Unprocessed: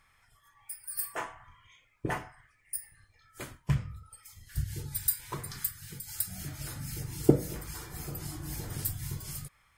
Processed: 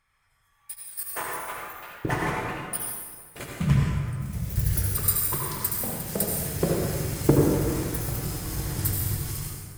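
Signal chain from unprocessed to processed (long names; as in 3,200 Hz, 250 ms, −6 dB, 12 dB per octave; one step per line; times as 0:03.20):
leveller curve on the samples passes 2
0:00.75–0:01.21: output level in coarse steps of 14 dB
convolution reverb RT60 2.0 s, pre-delay 68 ms, DRR −2.5 dB
delay with pitch and tempo change per echo 500 ms, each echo +3 semitones, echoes 3, each echo −6 dB
level −3 dB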